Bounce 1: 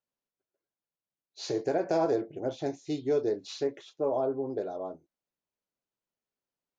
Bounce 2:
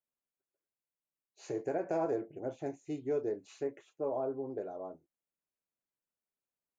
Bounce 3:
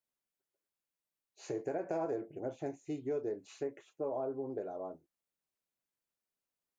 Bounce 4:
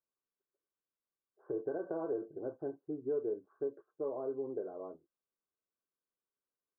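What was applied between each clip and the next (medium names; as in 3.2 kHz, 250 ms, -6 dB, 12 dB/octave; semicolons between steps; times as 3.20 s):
high-order bell 4.3 kHz -13 dB 1 oct; trim -6 dB
compression 2:1, threshold -36 dBFS, peak gain reduction 4.5 dB; trim +1 dB
rippled Chebyshev low-pass 1.6 kHz, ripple 9 dB; trim +2 dB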